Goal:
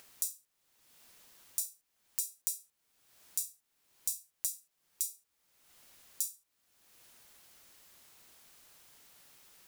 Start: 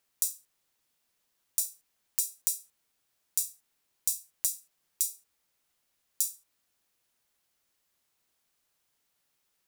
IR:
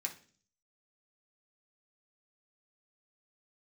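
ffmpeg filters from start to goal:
-af "acompressor=mode=upward:threshold=-36dB:ratio=2.5,volume=-5.5dB"

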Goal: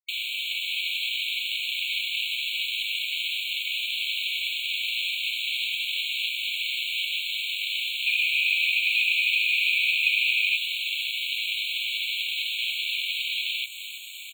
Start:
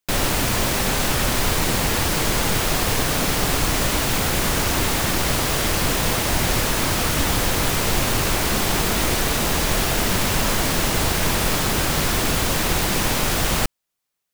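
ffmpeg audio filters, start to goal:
ffmpeg -i in.wav -filter_complex "[0:a]aecho=1:1:318|636|954|1272|1590:0.133|0.0747|0.0418|0.0234|0.0131,dynaudnorm=framelen=130:gausssize=11:maxgain=16dB,asoftclip=type=tanh:threshold=-4.5dB,aresample=8000,aresample=44100,alimiter=limit=-14dB:level=0:latency=1:release=146,asettb=1/sr,asplit=3[link_01][link_02][link_03];[link_01]atrim=end=8.064[link_04];[link_02]atrim=start=8.06:end=10.57,asetpts=PTS-STARTPTS,afade=type=in:duration=0.004:curve=qsin,afade=type=out:start_time=2.506:duration=0.004:curve=qsin,equalizer=frequency=1900:width=4.6:gain=14.5[link_05];[link_03]atrim=start=10.566[link_06];[link_04][link_05]acrossfade=duration=0.004:curve1=hsin:curve2=qsin[link_07];[link_07][link_06]acrossfade=duration=0.004:curve1=qsin:curve2=hsin,aeval=exprs='val(0)*sin(2*PI*350*n/s)':channel_layout=same,afreqshift=220,acrusher=bits=6:mix=0:aa=0.000001,afftfilt=real='re*eq(mod(floor(b*sr/1024/2200),2),1)':imag='im*eq(mod(floor(b*sr/1024/2200),2),1)':win_size=1024:overlap=0.75,volume=5dB" out.wav

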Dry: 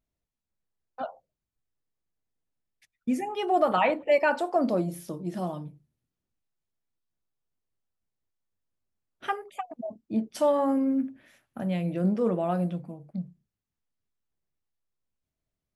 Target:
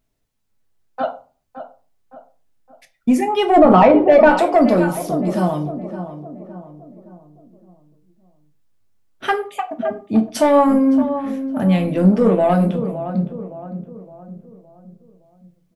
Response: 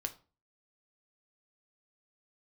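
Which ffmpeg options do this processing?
-filter_complex "[0:a]asplit=2[link_01][link_02];[link_02]adelay=565,lowpass=frequency=1400:poles=1,volume=-11dB,asplit=2[link_03][link_04];[link_04]adelay=565,lowpass=frequency=1400:poles=1,volume=0.47,asplit=2[link_05][link_06];[link_06]adelay=565,lowpass=frequency=1400:poles=1,volume=0.47,asplit=2[link_07][link_08];[link_08]adelay=565,lowpass=frequency=1400:poles=1,volume=0.47,asplit=2[link_09][link_10];[link_10]adelay=565,lowpass=frequency=1400:poles=1,volume=0.47[link_11];[link_01][link_03][link_05][link_07][link_09][link_11]amix=inputs=6:normalize=0,asoftclip=type=tanh:threshold=-18dB,asplit=3[link_12][link_13][link_14];[link_12]afade=type=out:start_time=3.56:duration=0.02[link_15];[link_13]tiltshelf=frequency=1400:gain=9.5,afade=type=in:start_time=3.56:duration=0.02,afade=type=out:start_time=4.29:duration=0.02[link_16];[link_14]afade=type=in:start_time=4.29:duration=0.02[link_17];[link_15][link_16][link_17]amix=inputs=3:normalize=0[link_18];[1:a]atrim=start_sample=2205[link_19];[link_18][link_19]afir=irnorm=-1:irlink=0,alimiter=level_in=14dB:limit=-1dB:release=50:level=0:latency=1,volume=-1dB"

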